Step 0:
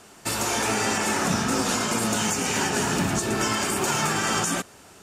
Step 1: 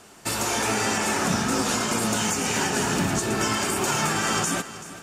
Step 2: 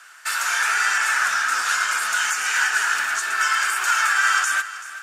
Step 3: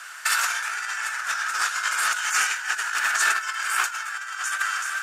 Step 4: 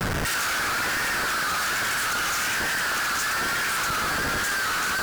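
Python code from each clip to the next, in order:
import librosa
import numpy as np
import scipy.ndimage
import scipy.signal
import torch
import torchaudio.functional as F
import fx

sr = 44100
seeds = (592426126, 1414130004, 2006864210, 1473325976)

y1 = fx.echo_feedback(x, sr, ms=383, feedback_pct=44, wet_db=-15.5)
y2 = fx.highpass_res(y1, sr, hz=1500.0, q=4.8)
y3 = fx.low_shelf(y2, sr, hz=310.0, db=-8.0)
y3 = fx.over_compress(y3, sr, threshold_db=-26.0, ratio=-0.5)
y3 = y3 * 10.0 ** (1.5 / 20.0)
y4 = fx.schmitt(y3, sr, flips_db=-35.0)
y4 = fx.vibrato(y4, sr, rate_hz=1.2, depth_cents=87.0)
y4 = fx.cheby_harmonics(y4, sr, harmonics=(5,), levels_db=(-18,), full_scale_db=-20.5)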